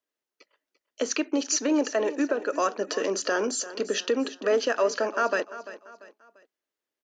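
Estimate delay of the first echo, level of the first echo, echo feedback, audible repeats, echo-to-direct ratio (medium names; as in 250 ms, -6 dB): 343 ms, -15.0 dB, 38%, 3, -14.5 dB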